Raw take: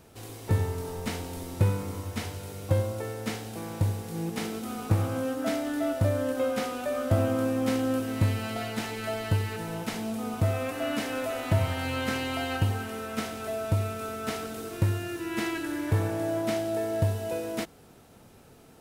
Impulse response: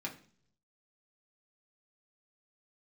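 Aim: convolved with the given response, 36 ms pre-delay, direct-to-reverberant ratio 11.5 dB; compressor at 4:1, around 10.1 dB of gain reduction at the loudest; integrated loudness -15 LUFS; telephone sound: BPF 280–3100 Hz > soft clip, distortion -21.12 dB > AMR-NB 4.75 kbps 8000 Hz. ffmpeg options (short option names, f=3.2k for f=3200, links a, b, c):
-filter_complex "[0:a]acompressor=threshold=-32dB:ratio=4,asplit=2[a][b];[1:a]atrim=start_sample=2205,adelay=36[c];[b][c]afir=irnorm=-1:irlink=0,volume=-12.5dB[d];[a][d]amix=inputs=2:normalize=0,highpass=280,lowpass=3.1k,asoftclip=threshold=-28.5dB,volume=25.5dB" -ar 8000 -c:a libopencore_amrnb -b:a 4750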